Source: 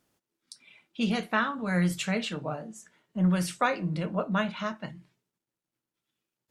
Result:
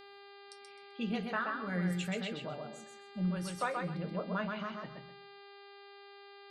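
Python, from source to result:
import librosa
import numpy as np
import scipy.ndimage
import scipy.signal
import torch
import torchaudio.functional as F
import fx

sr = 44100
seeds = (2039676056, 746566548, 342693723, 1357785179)

y = fx.envelope_sharpen(x, sr, power=1.5)
y = fx.echo_feedback(y, sr, ms=129, feedback_pct=23, wet_db=-4.0)
y = fx.dmg_buzz(y, sr, base_hz=400.0, harmonics=12, level_db=-45.0, tilt_db=-4, odd_only=False)
y = y * librosa.db_to_amplitude(-9.0)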